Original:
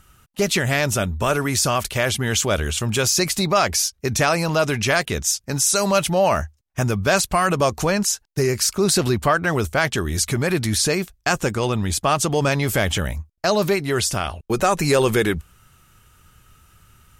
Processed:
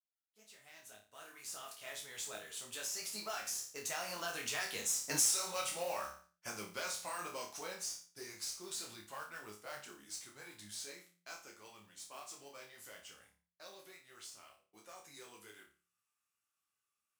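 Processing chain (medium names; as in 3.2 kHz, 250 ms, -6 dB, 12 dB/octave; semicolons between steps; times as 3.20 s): fade-in on the opening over 2.13 s; Doppler pass-by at 5.23 s, 25 m/s, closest 1.7 m; treble shelf 5.7 kHz +11.5 dB; chorus voices 6, 0.85 Hz, delay 14 ms, depth 4.8 ms; frequency weighting A; modulation noise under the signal 14 dB; flutter echo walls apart 4.9 m, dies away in 0.36 s; compression 3:1, threshold -47 dBFS, peak gain reduction 25 dB; de-hum 87.05 Hz, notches 2; trim +9 dB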